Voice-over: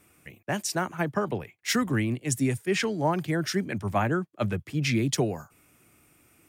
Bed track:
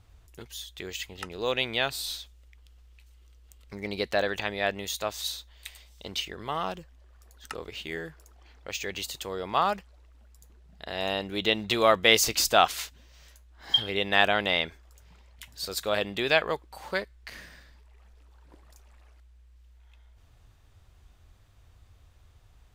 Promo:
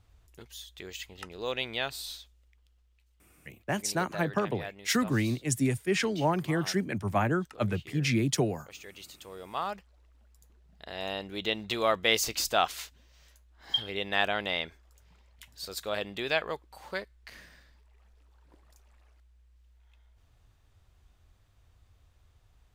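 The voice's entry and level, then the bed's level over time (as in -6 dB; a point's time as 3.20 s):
3.20 s, -1.5 dB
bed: 1.98 s -5 dB
2.95 s -13 dB
8.98 s -13 dB
10.07 s -5.5 dB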